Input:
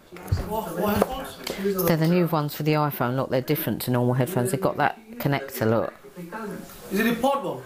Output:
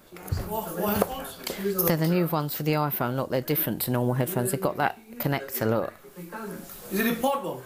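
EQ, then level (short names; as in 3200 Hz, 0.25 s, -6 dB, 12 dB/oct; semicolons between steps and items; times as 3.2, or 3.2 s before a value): high shelf 9800 Hz +10.5 dB; notches 50/100 Hz; -3.0 dB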